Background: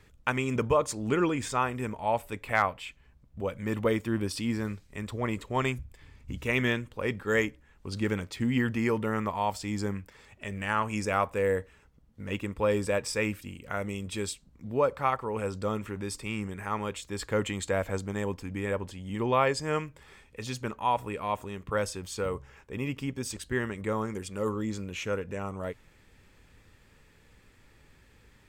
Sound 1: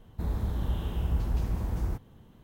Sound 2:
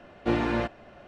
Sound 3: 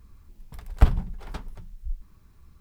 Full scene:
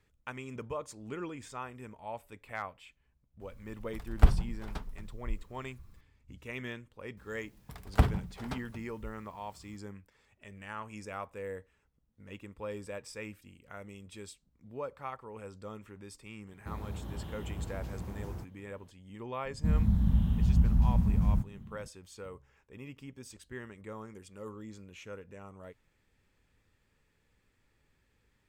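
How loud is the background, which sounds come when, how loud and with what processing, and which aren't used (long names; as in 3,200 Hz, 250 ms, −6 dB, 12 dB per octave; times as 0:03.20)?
background −13.5 dB
0:03.41: mix in 3 −3.5 dB
0:07.17: mix in 3 −0.5 dB + high-pass filter 81 Hz
0:16.47: mix in 1 −6.5 dB + high-pass filter 77 Hz
0:19.45: mix in 1 −7 dB + low shelf with overshoot 280 Hz +10 dB, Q 3
not used: 2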